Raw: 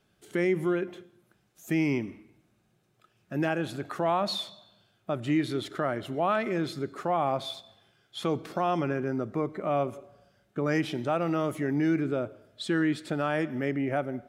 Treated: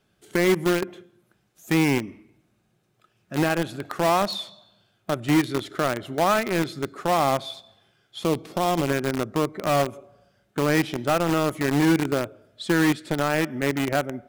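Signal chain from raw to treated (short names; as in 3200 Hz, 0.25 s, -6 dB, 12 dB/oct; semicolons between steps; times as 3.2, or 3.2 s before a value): in parallel at -4 dB: bit-crush 4-bit; 8.19–8.88 on the sum: bell 1500 Hz -7.5 dB 0.81 oct; gain +1.5 dB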